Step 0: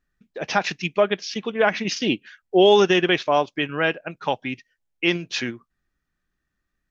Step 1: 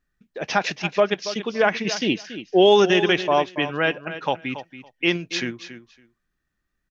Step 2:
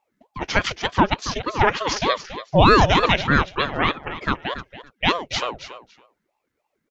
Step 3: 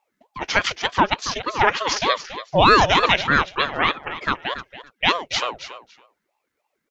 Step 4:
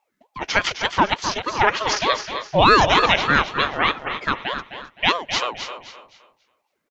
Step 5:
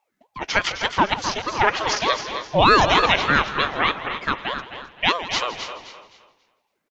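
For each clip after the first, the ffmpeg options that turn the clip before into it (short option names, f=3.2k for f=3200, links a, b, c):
-af "aecho=1:1:280|560:0.237|0.0379"
-af "aeval=exprs='val(0)*sin(2*PI*530*n/s+530*0.65/3.3*sin(2*PI*3.3*n/s))':c=same,volume=4dB"
-af "lowshelf=f=380:g=-10,volume=2.5dB"
-af "aecho=1:1:259|518|777:0.299|0.0925|0.0287"
-filter_complex "[0:a]asplit=4[a][b][c][d];[b]adelay=163,afreqshift=-90,volume=-15.5dB[e];[c]adelay=326,afreqshift=-180,volume=-24.4dB[f];[d]adelay=489,afreqshift=-270,volume=-33.2dB[g];[a][e][f][g]amix=inputs=4:normalize=0,volume=-1dB"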